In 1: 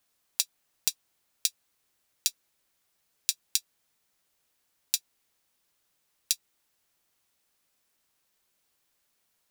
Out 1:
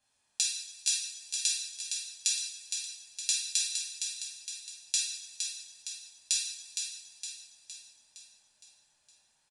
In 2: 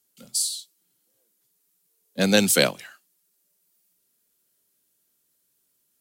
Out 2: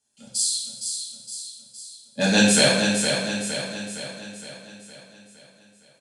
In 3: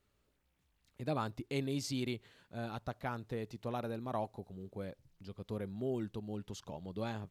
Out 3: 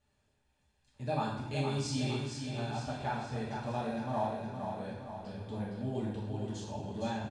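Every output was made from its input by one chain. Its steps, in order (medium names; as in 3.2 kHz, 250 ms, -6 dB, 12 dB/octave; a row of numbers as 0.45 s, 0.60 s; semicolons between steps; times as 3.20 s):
comb 1.2 ms, depth 41%; on a send: feedback delay 463 ms, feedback 53%, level -6 dB; on the sum: two-slope reverb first 0.75 s, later 2.7 s, from -18 dB, DRR -5.5 dB; resampled via 22.05 kHz; trim -4.5 dB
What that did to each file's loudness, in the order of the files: -1.0 LU, -0.5 LU, +4.0 LU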